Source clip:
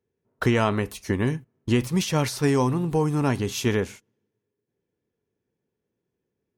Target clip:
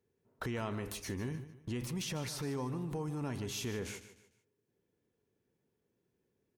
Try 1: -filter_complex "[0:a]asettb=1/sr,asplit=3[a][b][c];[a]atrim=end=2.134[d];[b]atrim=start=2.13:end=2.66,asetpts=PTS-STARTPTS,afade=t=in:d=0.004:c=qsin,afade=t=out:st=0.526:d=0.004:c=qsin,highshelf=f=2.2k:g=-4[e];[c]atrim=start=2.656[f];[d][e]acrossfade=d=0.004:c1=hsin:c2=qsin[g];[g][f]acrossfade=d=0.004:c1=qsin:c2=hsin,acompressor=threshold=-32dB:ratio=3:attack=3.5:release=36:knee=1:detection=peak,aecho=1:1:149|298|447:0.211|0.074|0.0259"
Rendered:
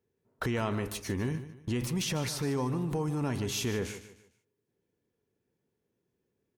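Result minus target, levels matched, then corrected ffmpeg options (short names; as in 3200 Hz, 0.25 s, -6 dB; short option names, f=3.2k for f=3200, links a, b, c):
compressor: peak gain reduction -6.5 dB
-filter_complex "[0:a]asettb=1/sr,asplit=3[a][b][c];[a]atrim=end=2.134[d];[b]atrim=start=2.13:end=2.66,asetpts=PTS-STARTPTS,afade=t=in:d=0.004:c=qsin,afade=t=out:st=0.526:d=0.004:c=qsin,highshelf=f=2.2k:g=-4[e];[c]atrim=start=2.656[f];[d][e]acrossfade=d=0.004:c1=hsin:c2=qsin[g];[g][f]acrossfade=d=0.004:c1=qsin:c2=hsin,acompressor=threshold=-42dB:ratio=3:attack=3.5:release=36:knee=1:detection=peak,aecho=1:1:149|298|447:0.211|0.074|0.0259"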